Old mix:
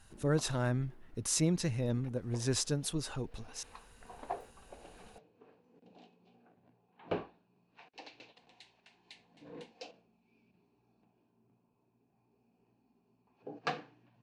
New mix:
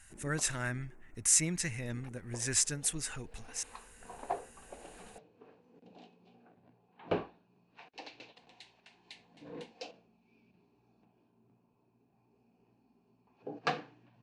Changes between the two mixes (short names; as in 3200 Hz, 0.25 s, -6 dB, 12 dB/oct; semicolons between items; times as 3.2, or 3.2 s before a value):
speech: add graphic EQ 125/250/500/1000/2000/4000/8000 Hz -5/-4/-8/-5/+11/-7/+11 dB; first sound: add steep low-pass 2600 Hz 96 dB/oct; second sound +3.0 dB